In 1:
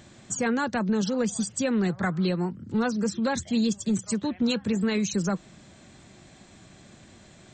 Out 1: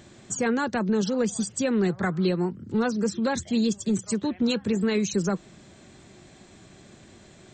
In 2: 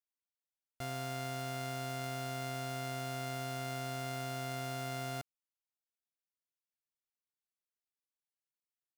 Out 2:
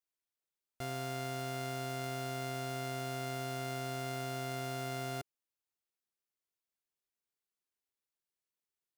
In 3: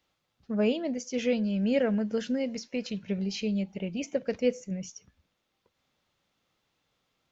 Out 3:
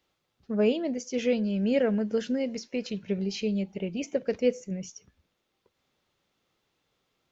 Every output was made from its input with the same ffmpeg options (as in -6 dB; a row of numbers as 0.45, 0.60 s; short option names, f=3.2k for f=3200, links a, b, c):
-af "equalizer=f=390:w=3:g=5.5"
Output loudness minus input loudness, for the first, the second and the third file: +1.0, +0.5, +1.0 LU